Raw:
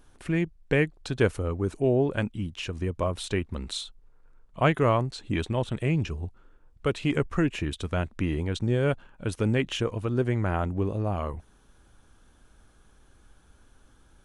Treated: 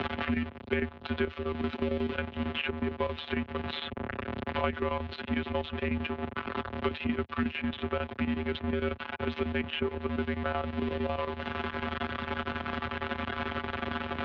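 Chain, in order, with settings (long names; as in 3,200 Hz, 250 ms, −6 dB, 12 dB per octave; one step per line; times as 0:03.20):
converter with a step at zero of −25.5 dBFS
phases set to zero 155 Hz
single-sideband voice off tune −71 Hz 190–3,400 Hz
square-wave tremolo 11 Hz, depth 65%, duty 75%
multiband upward and downward compressor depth 100%
level −2 dB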